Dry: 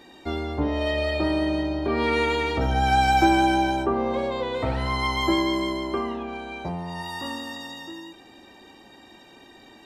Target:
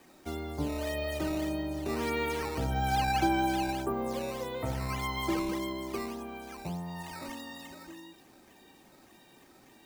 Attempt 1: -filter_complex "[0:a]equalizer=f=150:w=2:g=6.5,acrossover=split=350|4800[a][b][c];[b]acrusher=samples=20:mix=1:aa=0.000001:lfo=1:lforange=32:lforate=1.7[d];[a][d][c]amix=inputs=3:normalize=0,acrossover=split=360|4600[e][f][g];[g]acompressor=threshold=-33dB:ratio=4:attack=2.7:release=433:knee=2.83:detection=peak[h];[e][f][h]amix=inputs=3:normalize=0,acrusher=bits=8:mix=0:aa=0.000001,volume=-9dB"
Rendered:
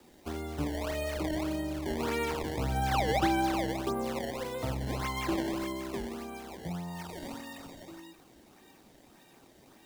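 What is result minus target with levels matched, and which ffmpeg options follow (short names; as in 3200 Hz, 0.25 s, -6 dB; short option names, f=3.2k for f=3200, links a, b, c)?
decimation with a swept rate: distortion +10 dB
-filter_complex "[0:a]equalizer=f=150:w=2:g=6.5,acrossover=split=350|4800[a][b][c];[b]acrusher=samples=8:mix=1:aa=0.000001:lfo=1:lforange=12.8:lforate=1.7[d];[a][d][c]amix=inputs=3:normalize=0,acrossover=split=360|4600[e][f][g];[g]acompressor=threshold=-33dB:ratio=4:attack=2.7:release=433:knee=2.83:detection=peak[h];[e][f][h]amix=inputs=3:normalize=0,acrusher=bits=8:mix=0:aa=0.000001,volume=-9dB"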